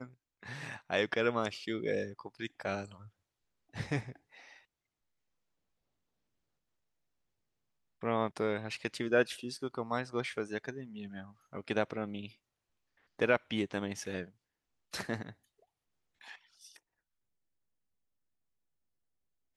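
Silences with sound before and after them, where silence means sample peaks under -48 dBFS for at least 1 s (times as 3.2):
4.53–8.03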